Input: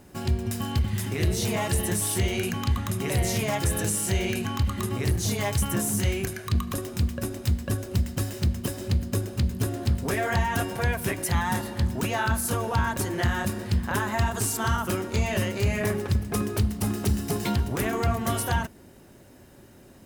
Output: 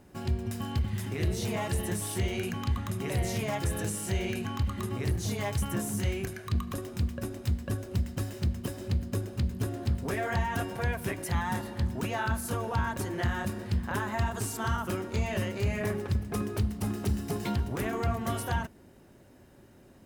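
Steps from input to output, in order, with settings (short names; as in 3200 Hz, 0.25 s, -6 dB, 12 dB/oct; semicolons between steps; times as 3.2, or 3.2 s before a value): high shelf 3800 Hz -5.5 dB; gain -4.5 dB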